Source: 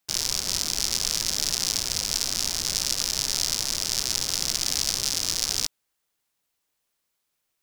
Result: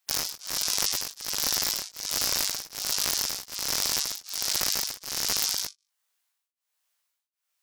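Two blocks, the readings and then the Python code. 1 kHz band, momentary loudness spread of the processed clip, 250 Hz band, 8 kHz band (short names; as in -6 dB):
+1.5 dB, 6 LU, -4.0 dB, -3.0 dB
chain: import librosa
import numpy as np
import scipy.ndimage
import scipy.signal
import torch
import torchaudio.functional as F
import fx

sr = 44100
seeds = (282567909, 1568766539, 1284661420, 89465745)

y = scipy.signal.sosfilt(scipy.signal.butter(2, 780.0, 'highpass', fs=sr, output='sos'), x)
y = fx.room_flutter(y, sr, wall_m=3.5, rt60_s=0.26)
y = fx.rider(y, sr, range_db=10, speed_s=0.5)
y = (np.mod(10.0 ** (9.0 / 20.0) * y + 1.0, 2.0) - 1.0) / 10.0 ** (9.0 / 20.0)
y = fx.spec_gate(y, sr, threshold_db=-20, keep='strong')
y = y * np.abs(np.cos(np.pi * 1.3 * np.arange(len(y)) / sr))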